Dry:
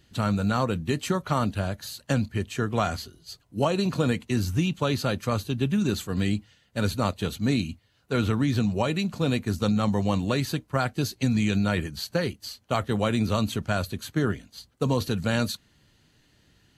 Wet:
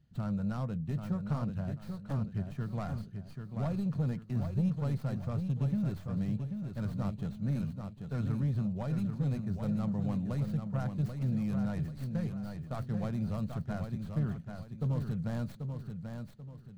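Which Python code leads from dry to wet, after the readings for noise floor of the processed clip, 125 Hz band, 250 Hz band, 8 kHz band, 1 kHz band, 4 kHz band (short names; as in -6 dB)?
-49 dBFS, -4.5 dB, -7.5 dB, under -20 dB, -15.5 dB, under -20 dB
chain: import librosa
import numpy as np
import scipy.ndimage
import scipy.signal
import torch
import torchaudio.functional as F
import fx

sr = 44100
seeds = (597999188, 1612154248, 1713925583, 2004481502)

y = fx.tracing_dist(x, sr, depth_ms=0.3)
y = fx.curve_eq(y, sr, hz=(100.0, 150.0, 340.0, 650.0, 960.0, 1400.0, 2800.0, 4400.0, 13000.0), db=(0, 9, -11, -5, -9, -9, -15, -14, -19))
y = 10.0 ** (-16.5 / 20.0) * np.tanh(y / 10.0 ** (-16.5 / 20.0))
y = fx.echo_feedback(y, sr, ms=787, feedback_pct=35, wet_db=-6.5)
y = y * 10.0 ** (-8.0 / 20.0)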